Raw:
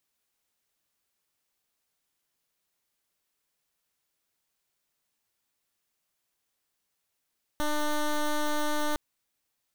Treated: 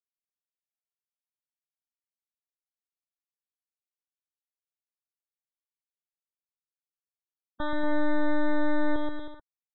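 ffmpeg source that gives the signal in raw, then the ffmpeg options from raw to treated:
-f lavfi -i "aevalsrc='0.0447*(2*lt(mod(299*t,1),0.12)-1)':d=1.36:s=44100"
-filter_complex "[0:a]afftfilt=real='re*gte(hypot(re,im),0.0355)':imag='im*gte(hypot(re,im),0.0355)':win_size=1024:overlap=0.75,asplit=2[a][b];[b]aecho=0:1:130|234|317.2|383.8|437:0.631|0.398|0.251|0.158|0.1[c];[a][c]amix=inputs=2:normalize=0"

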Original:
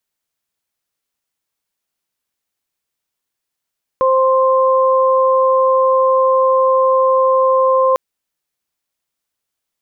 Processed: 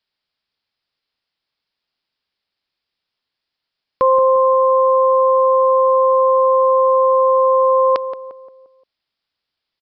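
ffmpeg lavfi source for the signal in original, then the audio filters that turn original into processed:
-f lavfi -i "aevalsrc='0.266*sin(2*PI*524*t)+0.2*sin(2*PI*1048*t)':d=3.95:s=44100"
-filter_complex "[0:a]aemphasis=mode=production:type=75kf,asplit=2[a][b];[b]adelay=175,lowpass=f=1.1k:p=1,volume=-9dB,asplit=2[c][d];[d]adelay=175,lowpass=f=1.1k:p=1,volume=0.48,asplit=2[e][f];[f]adelay=175,lowpass=f=1.1k:p=1,volume=0.48,asplit=2[g][h];[h]adelay=175,lowpass=f=1.1k:p=1,volume=0.48,asplit=2[i][j];[j]adelay=175,lowpass=f=1.1k:p=1,volume=0.48[k];[c][e][g][i][k]amix=inputs=5:normalize=0[l];[a][l]amix=inputs=2:normalize=0,aresample=11025,aresample=44100"

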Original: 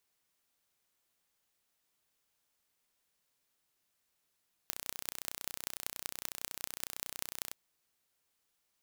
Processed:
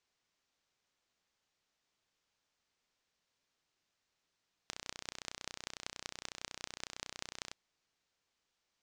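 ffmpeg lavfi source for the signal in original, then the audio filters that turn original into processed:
-f lavfi -i "aevalsrc='0.422*eq(mod(n,1427),0)*(0.5+0.5*eq(mod(n,8562),0))':d=2.83:s=44100"
-af "lowpass=f=6.6k:w=0.5412,lowpass=f=6.6k:w=1.3066"

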